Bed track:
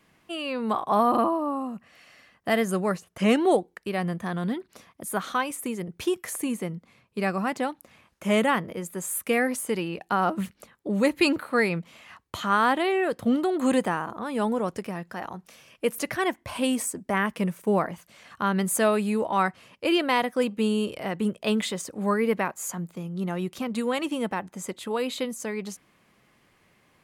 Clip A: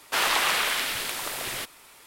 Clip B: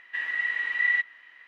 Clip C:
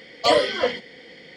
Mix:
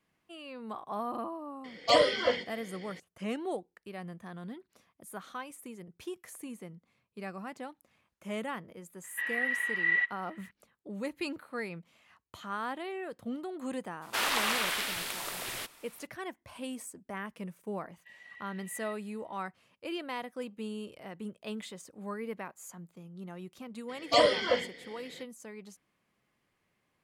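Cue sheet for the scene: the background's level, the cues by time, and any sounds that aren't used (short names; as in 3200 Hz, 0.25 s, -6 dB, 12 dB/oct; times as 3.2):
bed track -14.5 dB
1.64 add C -5.5 dB
9.04 add B -2.5 dB + LPF 3500 Hz 6 dB/oct
14.01 add A -6 dB, fades 0.02 s
17.92 add B -16 dB + fixed phaser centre 580 Hz, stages 4
23.88 add C -5.5 dB, fades 0.02 s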